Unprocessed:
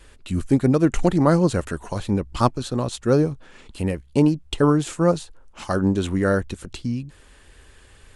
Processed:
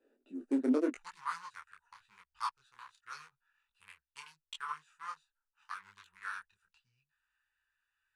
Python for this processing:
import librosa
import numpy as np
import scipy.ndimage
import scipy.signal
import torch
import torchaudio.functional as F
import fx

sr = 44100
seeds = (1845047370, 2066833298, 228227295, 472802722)

y = fx.wiener(x, sr, points=41)
y = fx.ellip_highpass(y, sr, hz=fx.steps((0.0, 250.0), (0.93, 1000.0)), order=4, stop_db=40)
y = fx.detune_double(y, sr, cents=29)
y = y * librosa.db_to_amplitude(-6.5)